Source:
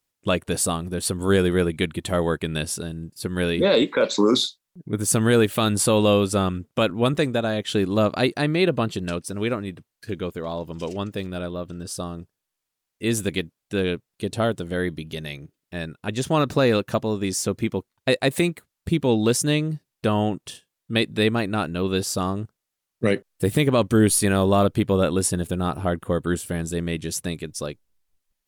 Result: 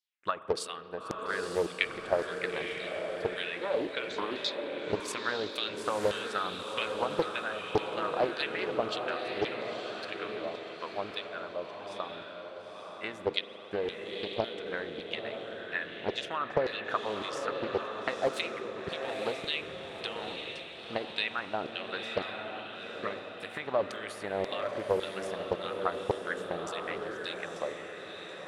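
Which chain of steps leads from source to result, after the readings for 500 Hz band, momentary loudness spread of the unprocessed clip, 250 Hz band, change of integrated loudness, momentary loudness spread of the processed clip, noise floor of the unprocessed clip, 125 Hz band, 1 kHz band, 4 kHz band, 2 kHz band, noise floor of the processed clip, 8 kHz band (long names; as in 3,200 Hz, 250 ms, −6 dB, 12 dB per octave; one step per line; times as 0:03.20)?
−9.5 dB, 13 LU, −18.5 dB, −11.0 dB, 8 LU, −83 dBFS, −23.0 dB, −6.0 dB, −7.5 dB, −5.5 dB, −45 dBFS, −21.5 dB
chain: parametric band 1,700 Hz +4 dB 2.1 octaves
transient designer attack +12 dB, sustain +8 dB
downward compressor, threshold −11 dBFS, peak gain reduction 7.5 dB
auto-filter band-pass saw down 1.8 Hz 380–4,700 Hz
feedback delay with all-pass diffusion 931 ms, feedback 47%, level −4.5 dB
spring reverb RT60 3.7 s, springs 39 ms, chirp 50 ms, DRR 13 dB
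highs frequency-modulated by the lows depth 0.51 ms
level −7 dB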